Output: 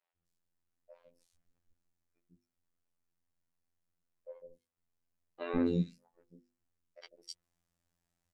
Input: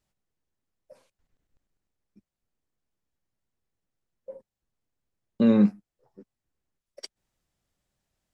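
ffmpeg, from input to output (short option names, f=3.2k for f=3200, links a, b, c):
-filter_complex "[0:a]asettb=1/sr,asplit=3[a][b][c];[a]atrim=end=4.334[d];[b]atrim=start=4.33:end=5.42,asetpts=PTS-STARTPTS,afade=t=in:d=0.004:c=qsin,afade=t=out:st=1.086:d=0.004:c=qsin,aeval=exprs='if(lt(val(0),0),0.447*val(0),val(0))':c=same[e];[c]atrim=start=5.416[f];[d][e]acrossfade=d=0.004:c1=hsin:c2=qsin[g];[g][f]acrossfade=d=0.004:c1=qsin:c2=hsin,acrossover=split=460|3500[h][i][j];[h]adelay=150[k];[j]adelay=260[l];[k][i][l]amix=inputs=3:normalize=0,afftfilt=real='hypot(re,im)*cos(PI*b)':imag='0':win_size=2048:overlap=0.75,bandreject=f=50:t=h:w=6,bandreject=f=100:t=h:w=6,bandreject=f=150:t=h:w=6,bandreject=f=200:t=h:w=6,bandreject=f=250:t=h:w=6,bandreject=f=300:t=h:w=6,bandreject=f=350:t=h:w=6,bandreject=f=400:t=h:w=6,bandreject=f=450:t=h:w=6,bandreject=f=500:t=h:w=6"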